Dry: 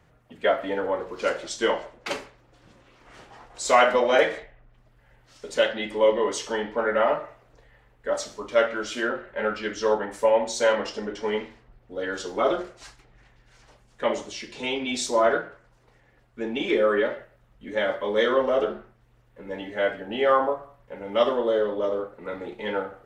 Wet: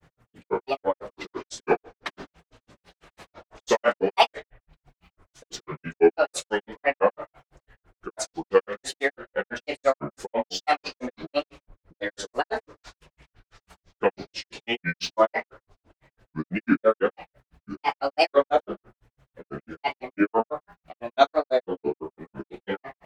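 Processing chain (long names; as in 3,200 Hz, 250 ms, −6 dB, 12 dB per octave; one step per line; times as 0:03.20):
granular cloud 107 ms, grains 6 per second, spray 20 ms, pitch spread up and down by 7 semitones
level +4.5 dB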